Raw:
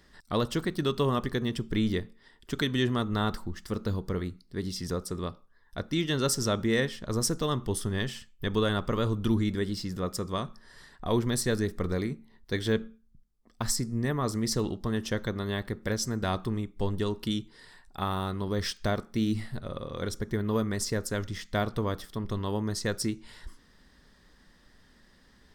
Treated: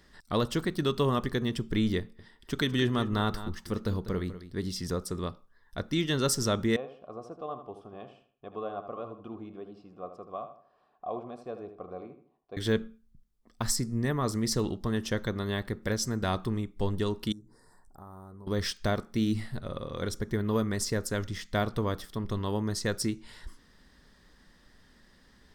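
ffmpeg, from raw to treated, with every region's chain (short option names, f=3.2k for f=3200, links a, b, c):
-filter_complex "[0:a]asettb=1/sr,asplit=3[a][b][c];[a]atrim=end=1.994[d];[b]atrim=start=1.99:end=4.59,asetpts=PTS-STARTPTS,afade=t=in:d=0.004:c=qsin,afade=t=out:st=2.596:d=0.004:c=qsin,bandreject=f=7.2k:w=14,aecho=1:1:197:0.211,atrim=end_sample=114660[e];[c]atrim=start=4.586[f];[d][e]acrossfade=d=0.004:c1=hsin:c2=qsin[g];[g][f]acrossfade=d=0.004:c1=qsin:c2=hsin,asettb=1/sr,asplit=3[h][i][j];[h]atrim=end=6.764[k];[i]atrim=start=6.76:end=12.57,asetpts=PTS-STARTPTS,afade=t=in:d=0.004:c=qsin,afade=t=out:st=5.806:d=0.004:c=qsin,asplit=3[l][m][n];[l]bandpass=f=730:t=q:w=8,volume=0dB[o];[m]bandpass=f=1.09k:t=q:w=8,volume=-6dB[p];[n]bandpass=f=2.44k:t=q:w=8,volume=-9dB[q];[o][p][q]amix=inputs=3:normalize=0,tiltshelf=f=1.3k:g=8,asplit=2[r][s];[s]adelay=78,lowpass=f=3.5k:p=1,volume=-9.5dB,asplit=2[t][u];[u]adelay=78,lowpass=f=3.5k:p=1,volume=0.35,asplit=2[v][w];[w]adelay=78,lowpass=f=3.5k:p=1,volume=0.35,asplit=2[x][y];[y]adelay=78,lowpass=f=3.5k:p=1,volume=0.35[z];[r][t][v][x][z]amix=inputs=5:normalize=0,atrim=end_sample=256221[aa];[j]atrim=start=12.566[ab];[k][aa]acrossfade=d=0.004:c1=hsin:c2=qsin[ac];[ac][ab]acrossfade=d=0.004:c1=qsin:c2=hsin,asettb=1/sr,asplit=3[ad][ae][af];[ad]atrim=end=17.324[ag];[ae]atrim=start=17.32:end=18.47,asetpts=PTS-STARTPTS,afade=t=in:d=0.004:c=qsin,afade=t=out:st=1.146:d=0.004:c=qsin,bandreject=f=60:t=h:w=6,bandreject=f=120:t=h:w=6,bandreject=f=180:t=h:w=6,bandreject=f=240:t=h:w=6,bandreject=f=300:t=h:w=6,bandreject=f=360:t=h:w=6,bandreject=f=420:t=h:w=6,bandreject=f=480:t=h:w=6,bandreject=f=540:t=h:w=6,bandreject=f=600:t=h:w=6,acompressor=threshold=-51dB:ratio=2.5:attack=3.2:release=140:knee=1:detection=peak,asuperstop=centerf=2900:order=4:qfactor=0.53[ah];[af]atrim=start=18.466[ai];[ag][ah]acrossfade=d=0.004:c1=hsin:c2=qsin[aj];[aj][ai]acrossfade=d=0.004:c1=qsin:c2=hsin"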